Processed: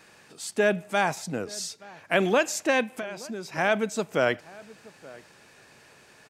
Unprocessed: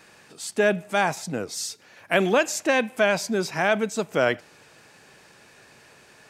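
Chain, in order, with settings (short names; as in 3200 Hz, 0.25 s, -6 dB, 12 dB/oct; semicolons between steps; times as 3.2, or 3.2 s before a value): 1.47–2.23 high shelf 12000 Hz -8.5 dB; 2.83–3.58 compressor 8:1, threshold -30 dBFS, peak gain reduction 14.5 dB; outdoor echo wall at 150 m, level -21 dB; gain -2 dB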